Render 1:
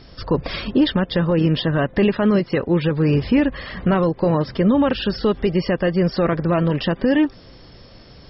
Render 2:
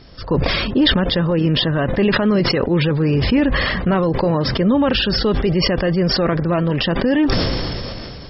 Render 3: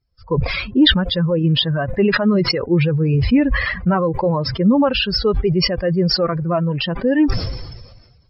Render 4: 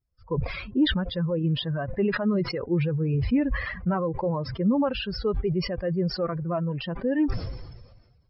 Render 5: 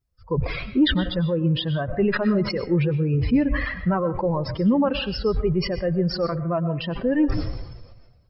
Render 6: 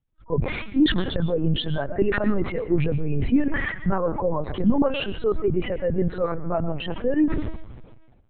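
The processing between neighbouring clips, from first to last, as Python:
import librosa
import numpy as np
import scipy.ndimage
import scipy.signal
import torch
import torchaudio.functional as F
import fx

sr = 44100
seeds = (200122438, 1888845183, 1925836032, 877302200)

y1 = fx.sustainer(x, sr, db_per_s=21.0)
y2 = fx.bin_expand(y1, sr, power=2.0)
y2 = y2 * 10.0 ** (4.5 / 20.0)
y3 = fx.high_shelf(y2, sr, hz=3500.0, db=-12.0)
y3 = y3 * 10.0 ** (-8.5 / 20.0)
y4 = fx.rev_freeverb(y3, sr, rt60_s=0.49, hf_ratio=0.45, predelay_ms=80, drr_db=12.0)
y4 = y4 * 10.0 ** (3.5 / 20.0)
y5 = fx.lpc_vocoder(y4, sr, seeds[0], excitation='pitch_kept', order=10)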